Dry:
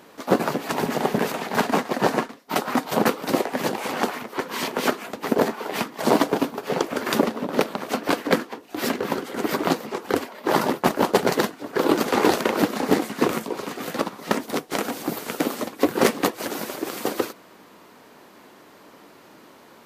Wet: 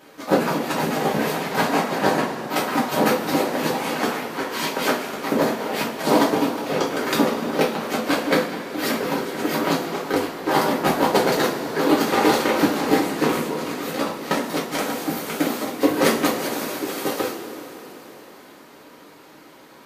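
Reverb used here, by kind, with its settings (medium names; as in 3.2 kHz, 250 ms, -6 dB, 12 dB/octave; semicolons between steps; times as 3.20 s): two-slope reverb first 0.32 s, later 4.3 s, from -18 dB, DRR -5.5 dB; trim -4 dB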